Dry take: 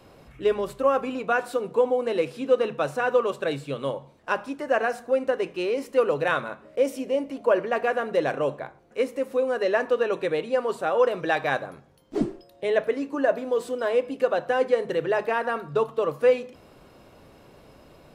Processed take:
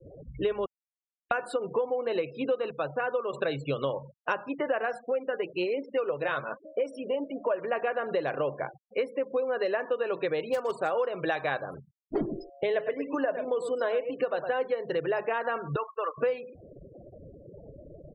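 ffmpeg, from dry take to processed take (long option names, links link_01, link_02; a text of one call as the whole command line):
ffmpeg -i in.wav -filter_complex "[0:a]asettb=1/sr,asplit=3[link_01][link_02][link_03];[link_01]atrim=end=4.984[link_04];[link_02]atrim=start=4.98:end=7.62,asetpts=PTS-STARTPTS,afade=type=in:duration=0.004:curve=qsin,afade=type=out:start_time=2.636:duration=0.004:curve=qsin,flanger=delay=3.2:depth=5.9:regen=47:speed=1.2:shape=sinusoidal[link_05];[link_03]atrim=start=7.616[link_06];[link_04][link_05]acrossfade=duration=0.004:curve1=hsin:curve2=qsin[link_07];[link_07][link_06]acrossfade=duration=0.004:curve1=qsin:curve2=hsin,asplit=3[link_08][link_09][link_10];[link_08]afade=type=out:start_time=10.42:duration=0.02[link_11];[link_09]acrusher=bits=4:mode=log:mix=0:aa=0.000001,afade=type=in:start_time=10.42:duration=0.02,afade=type=out:start_time=10.91:duration=0.02[link_12];[link_10]afade=type=in:start_time=10.91:duration=0.02[link_13];[link_11][link_12][link_13]amix=inputs=3:normalize=0,asplit=3[link_14][link_15][link_16];[link_14]afade=type=out:start_time=12.28:duration=0.02[link_17];[link_15]aecho=1:1:107:0.316,afade=type=in:start_time=12.28:duration=0.02,afade=type=out:start_time=14.52:duration=0.02[link_18];[link_16]afade=type=in:start_time=14.52:duration=0.02[link_19];[link_17][link_18][link_19]amix=inputs=3:normalize=0,asettb=1/sr,asplit=3[link_20][link_21][link_22];[link_20]atrim=end=15.764[link_23];[link_21]atrim=start=15.76:end=16.18,asetpts=PTS-STARTPTS,afade=type=in:duration=0.004:curve=qsin,afade=type=out:start_time=0.416:duration=0.004:curve=qsin,bandpass=frequency=1700:width_type=q:width=1.7[link_24];[link_22]atrim=start=16.176[link_25];[link_23][link_24]acrossfade=duration=0.004:curve1=hsin:curve2=qsin[link_26];[link_26][link_25]acrossfade=duration=0.004:curve1=qsin:curve2=hsin,asplit=5[link_27][link_28][link_29][link_30][link_31];[link_27]atrim=end=0.66,asetpts=PTS-STARTPTS,afade=type=out:start_time=0.656:duration=0.004:curve=hsin[link_32];[link_28]atrim=start=0.66:end=1.31,asetpts=PTS-STARTPTS,volume=0[link_33];[link_29]atrim=start=1.31:end=2.712,asetpts=PTS-STARTPTS,afade=type=in:duration=0.004:curve=hsin[link_34];[link_30]atrim=start=2.708:end=3.332,asetpts=PTS-STARTPTS,volume=-5.5dB[link_35];[link_31]atrim=start=3.328[link_36];[link_32][link_33][link_34]concat=n=3:v=0:a=1[link_37];[link_37][link_35]acrossfade=duration=0.004:curve1=hsin:curve2=hsin[link_38];[link_38][link_36]acrossfade=duration=0.004:curve1=hsin:curve2=hsin,afftfilt=real='re*gte(hypot(re,im),0.01)':imag='im*gte(hypot(re,im),0.01)':win_size=1024:overlap=0.75,equalizer=frequency=240:width_type=o:width=0.5:gain=-6.5,acompressor=threshold=-34dB:ratio=6,volume=7.5dB" out.wav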